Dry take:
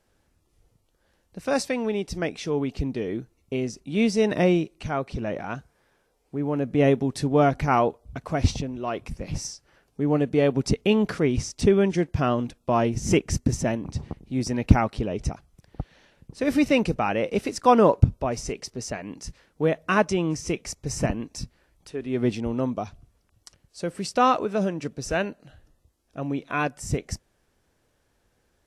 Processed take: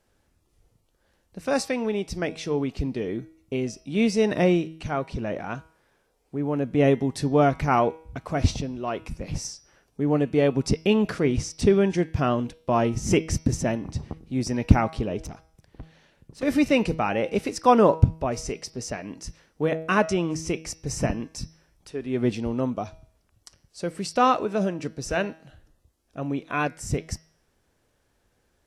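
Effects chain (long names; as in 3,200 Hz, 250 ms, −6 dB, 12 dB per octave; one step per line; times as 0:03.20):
hum removal 160.3 Hz, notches 37
0:15.25–0:16.43: tube saturation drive 33 dB, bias 0.45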